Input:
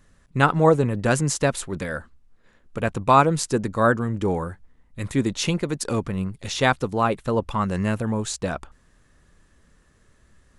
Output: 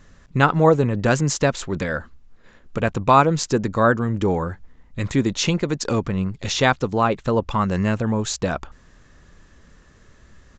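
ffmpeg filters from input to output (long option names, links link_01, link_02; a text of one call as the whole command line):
ffmpeg -i in.wav -filter_complex "[0:a]asplit=2[link_01][link_02];[link_02]acompressor=threshold=-32dB:ratio=6,volume=3dB[link_03];[link_01][link_03]amix=inputs=2:normalize=0,aresample=16000,aresample=44100" out.wav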